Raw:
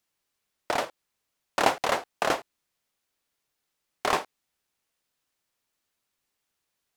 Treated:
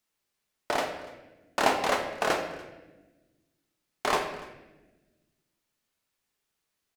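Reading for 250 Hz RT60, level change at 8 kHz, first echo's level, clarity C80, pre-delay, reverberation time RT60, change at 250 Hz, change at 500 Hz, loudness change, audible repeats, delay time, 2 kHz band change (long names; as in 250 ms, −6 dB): 1.9 s, −1.0 dB, −22.5 dB, 9.0 dB, 5 ms, 1.1 s, +1.0 dB, 0.0 dB, −1.0 dB, 1, 289 ms, 0.0 dB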